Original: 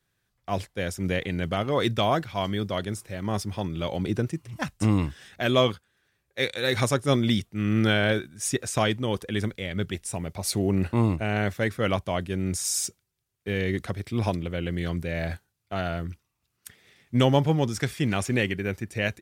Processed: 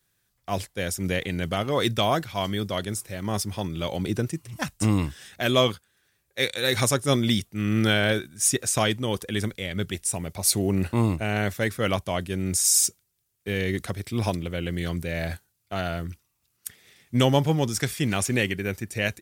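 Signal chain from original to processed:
high-shelf EQ 5,300 Hz +11 dB

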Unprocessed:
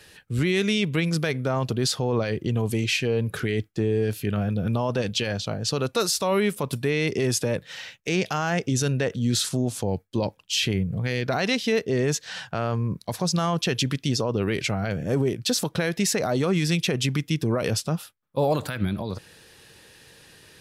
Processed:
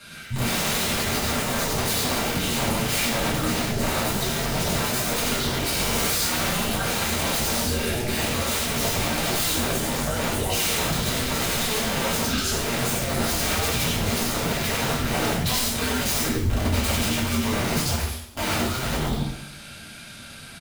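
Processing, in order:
delay with pitch and tempo change per echo 109 ms, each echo +4 semitones, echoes 2, each echo −6 dB
0:16.26–0:16.74: resonant band-pass 160 Hz, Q 1.9
single-tap delay 95 ms −3.5 dB
wrap-around overflow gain 18.5 dB
frequency shifter −240 Hz
0:05.64–0:06.07: flutter between parallel walls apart 10.5 metres, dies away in 1.2 s
brickwall limiter −21.5 dBFS, peak gain reduction 13 dB
coupled-rooms reverb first 0.6 s, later 1.6 s, from −17 dB, DRR −7.5 dB

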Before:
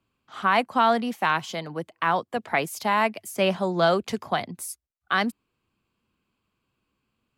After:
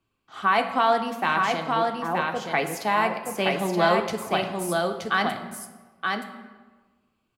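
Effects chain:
0:01.62–0:02.45: Bessel low-pass filter 740 Hz
single-tap delay 924 ms −3.5 dB
on a send at −5 dB: convolution reverb RT60 1.4 s, pre-delay 3 ms
on the sum: level −1.5 dB

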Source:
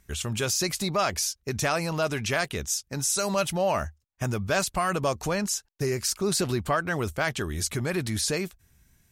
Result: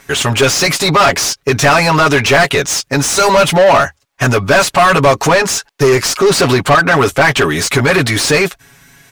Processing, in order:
comb filter 7.2 ms, depth 97%
mid-hump overdrive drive 26 dB, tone 2,500 Hz, clips at −7 dBFS
level +6.5 dB

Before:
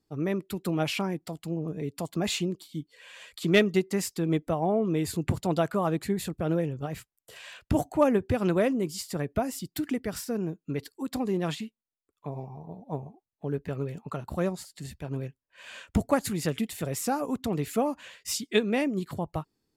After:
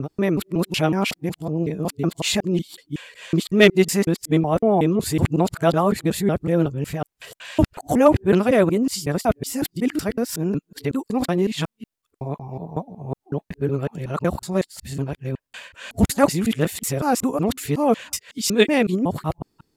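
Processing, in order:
reversed piece by piece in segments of 185 ms
level +8 dB

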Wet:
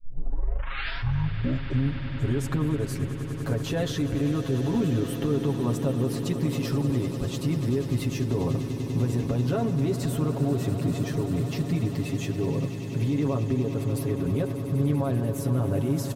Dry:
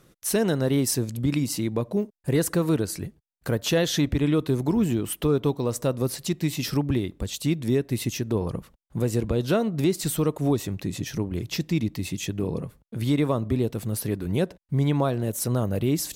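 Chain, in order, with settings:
turntable start at the beginning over 2.78 s
comb filter 7.3 ms, depth 91%
brickwall limiter −18.5 dBFS, peak gain reduction 11.5 dB
high-shelf EQ 2,600 Hz −12 dB
echo that builds up and dies away 98 ms, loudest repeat 8, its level −15 dB

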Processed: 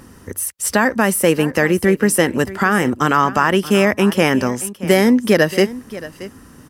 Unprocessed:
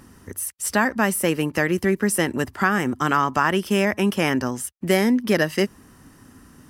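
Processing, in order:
parametric band 500 Hz +5 dB 0.34 octaves
on a send: single-tap delay 627 ms −17 dB
on the sum: boost into a limiter +6.5 dB
level −1 dB

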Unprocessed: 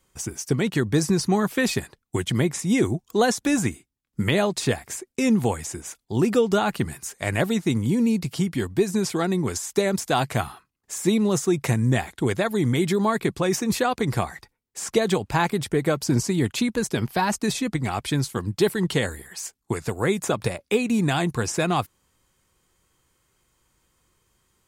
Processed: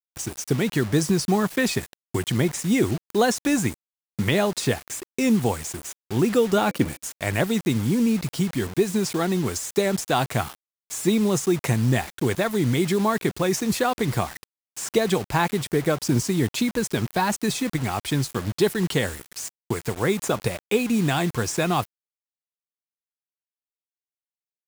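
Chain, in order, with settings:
bit-depth reduction 6 bits, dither none
0:06.55–0:07.02: hollow resonant body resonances 290/510/2,300 Hz, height 8 dB → 11 dB

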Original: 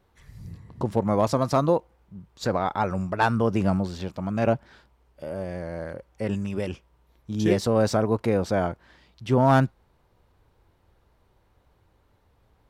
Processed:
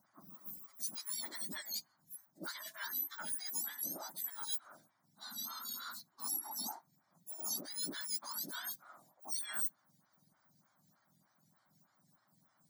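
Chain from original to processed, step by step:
frequency axis turned over on the octave scale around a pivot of 1,500 Hz
reversed playback
downward compressor 5 to 1, threshold −37 dBFS, peak gain reduction 17 dB
reversed playback
phaser with its sweep stopped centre 1,100 Hz, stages 4
phaser with staggered stages 3.3 Hz
level +4 dB

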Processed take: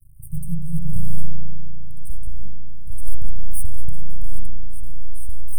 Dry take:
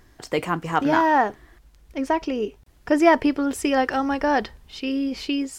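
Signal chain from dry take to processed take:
half-wave rectification
linear-phase brick-wall band-stop 180–8,400 Hz
spring reverb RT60 3.1 s, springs 35 ms, DRR −0.5 dB
level +8.5 dB

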